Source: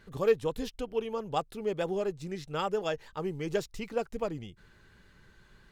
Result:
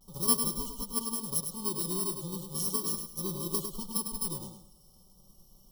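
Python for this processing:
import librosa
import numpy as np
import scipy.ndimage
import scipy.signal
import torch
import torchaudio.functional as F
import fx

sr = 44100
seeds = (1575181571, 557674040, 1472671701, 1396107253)

p1 = fx.bit_reversed(x, sr, seeds[0], block=64)
p2 = p1 + 0.64 * np.pad(p1, (int(5.3 * sr / 1000.0), 0))[:len(p1)]
p3 = fx.vibrato(p2, sr, rate_hz=0.39, depth_cents=34.0)
p4 = fx.brickwall_bandstop(p3, sr, low_hz=1300.0, high_hz=2900.0)
p5 = p4 + fx.echo_feedback(p4, sr, ms=103, feedback_pct=27, wet_db=-7, dry=0)
y = F.gain(torch.from_numpy(p5), -2.5).numpy()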